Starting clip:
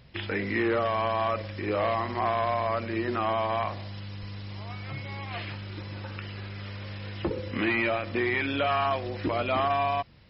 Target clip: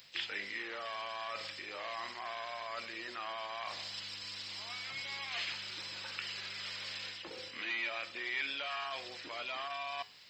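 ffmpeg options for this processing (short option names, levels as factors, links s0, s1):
-filter_complex "[0:a]asplit=2[s0][s1];[s1]asetrate=66075,aresample=44100,atempo=0.66742,volume=0.141[s2];[s0][s2]amix=inputs=2:normalize=0,areverse,acompressor=threshold=0.0178:ratio=6,areverse,aderivative,bandreject=f=105.3:t=h:w=4,bandreject=f=210.6:t=h:w=4,bandreject=f=315.9:t=h:w=4,bandreject=f=421.2:t=h:w=4,bandreject=f=526.5:t=h:w=4,bandreject=f=631.8:t=h:w=4,bandreject=f=737.1:t=h:w=4,bandreject=f=842.4:t=h:w=4,bandreject=f=947.7:t=h:w=4,bandreject=f=1053:t=h:w=4,bandreject=f=1158.3:t=h:w=4,bandreject=f=1263.6:t=h:w=4,bandreject=f=1368.9:t=h:w=4,bandreject=f=1474.2:t=h:w=4,bandreject=f=1579.5:t=h:w=4,bandreject=f=1684.8:t=h:w=4,bandreject=f=1790.1:t=h:w=4,bandreject=f=1895.4:t=h:w=4,bandreject=f=2000.7:t=h:w=4,bandreject=f=2106:t=h:w=4,bandreject=f=2211.3:t=h:w=4,bandreject=f=2316.6:t=h:w=4,bandreject=f=2421.9:t=h:w=4,bandreject=f=2527.2:t=h:w=4,bandreject=f=2632.5:t=h:w=4,bandreject=f=2737.8:t=h:w=4,bandreject=f=2843.1:t=h:w=4,bandreject=f=2948.4:t=h:w=4,bandreject=f=3053.7:t=h:w=4,bandreject=f=3159:t=h:w=4,volume=4.73"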